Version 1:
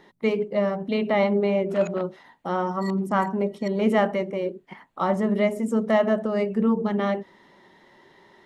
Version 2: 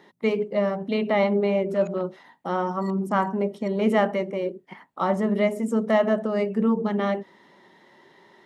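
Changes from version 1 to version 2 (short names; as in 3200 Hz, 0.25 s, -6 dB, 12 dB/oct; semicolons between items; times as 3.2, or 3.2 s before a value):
background -8.5 dB; master: add HPF 120 Hz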